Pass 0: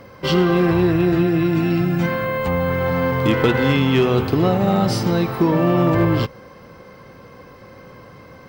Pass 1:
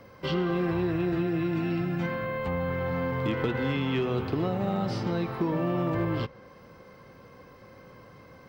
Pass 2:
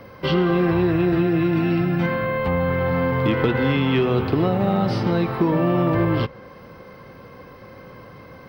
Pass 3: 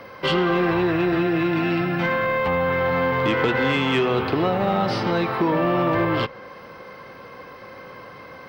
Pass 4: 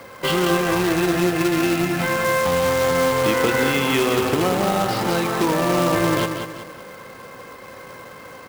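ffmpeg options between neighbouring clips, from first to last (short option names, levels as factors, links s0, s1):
-filter_complex "[0:a]acrossover=split=350|4700[s0][s1][s2];[s0]acompressor=threshold=0.112:ratio=4[s3];[s1]acompressor=threshold=0.0891:ratio=4[s4];[s2]acompressor=threshold=0.00178:ratio=4[s5];[s3][s4][s5]amix=inputs=3:normalize=0,volume=0.376"
-af "equalizer=f=7200:t=o:w=0.44:g=-14,volume=2.66"
-filter_complex "[0:a]asplit=2[s0][s1];[s1]highpass=f=720:p=1,volume=4.47,asoftclip=type=tanh:threshold=0.447[s2];[s0][s2]amix=inputs=2:normalize=0,lowpass=f=5900:p=1,volume=0.501,volume=0.75"
-af "aecho=1:1:187|374|561|748|935:0.447|0.174|0.0679|0.0265|0.0103,acrusher=bits=2:mode=log:mix=0:aa=0.000001"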